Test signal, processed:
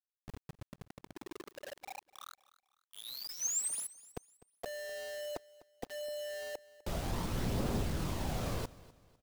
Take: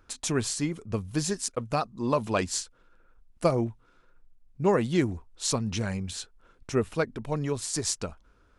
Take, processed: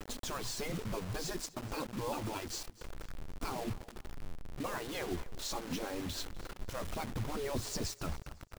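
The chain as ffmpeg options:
ffmpeg -i in.wav -af "lowpass=3100,afftfilt=real='re*lt(hypot(re,im),0.112)':imag='im*lt(hypot(re,im),0.112)':win_size=1024:overlap=0.75,equalizer=frequency=2100:width_type=o:width=1.9:gain=-13,alimiter=level_in=13.5dB:limit=-24dB:level=0:latency=1:release=318,volume=-13.5dB,aphaser=in_gain=1:out_gain=1:delay=4:decay=0.4:speed=0.26:type=triangular,acrusher=bits=8:mix=0:aa=0.000001,aecho=1:1:251|502|753:0.1|0.036|0.013,volume=9.5dB" out.wav

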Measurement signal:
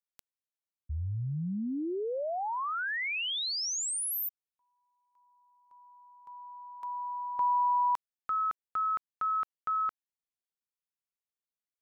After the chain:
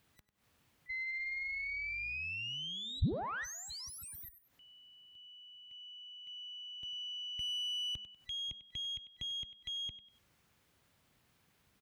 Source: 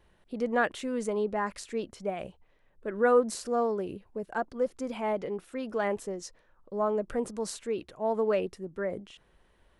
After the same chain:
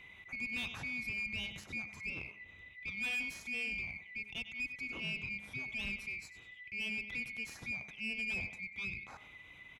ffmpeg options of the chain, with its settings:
ffmpeg -i in.wav -af "afftfilt=real='real(if(lt(b,920),b+92*(1-2*mod(floor(b/92),2)),b),0)':imag='imag(if(lt(b,920),b+92*(1-2*mod(floor(b/92),2)),b),0)':win_size=2048:overlap=0.75,acompressor=mode=upward:threshold=-36dB:ratio=2.5:attack=0.16:release=147:knee=2.83:detection=peak,aecho=1:1:97|194|291:0.188|0.0584|0.0181,adynamicequalizer=threshold=0.00224:dfrequency=6500:dqfactor=3.9:tfrequency=6500:tqfactor=3.9:attack=5:release=100:ratio=0.45:range=2:mode=boostabove:tftype=bell,aeval=exprs='(tanh(20*val(0)+0.5)-tanh(0.5))/20':channel_layout=same,highpass=55,bandreject=frequency=208.3:width_type=h:width=4,bandreject=frequency=416.6:width_type=h:width=4,bandreject=frequency=624.9:width_type=h:width=4,bandreject=frequency=833.2:width_type=h:width=4,bandreject=frequency=1041.5:width_type=h:width=4,bandreject=frequency=1249.8:width_type=h:width=4,bandreject=frequency=1458.1:width_type=h:width=4,bandreject=frequency=1666.4:width_type=h:width=4,bandreject=frequency=1874.7:width_type=h:width=4,acompressor=threshold=-35dB:ratio=2:attack=0.27:release=137:knee=6:detection=rms,bass=frequency=250:gain=13,treble=frequency=4000:gain=-10,volume=-1dB" out.wav

